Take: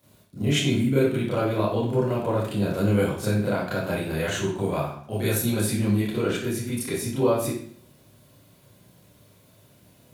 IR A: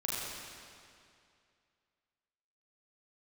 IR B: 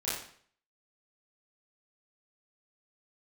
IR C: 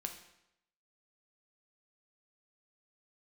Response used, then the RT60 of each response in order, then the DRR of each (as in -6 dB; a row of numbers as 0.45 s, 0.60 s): B; 2.4 s, 0.55 s, 0.80 s; -6.0 dB, -10.5 dB, 4.0 dB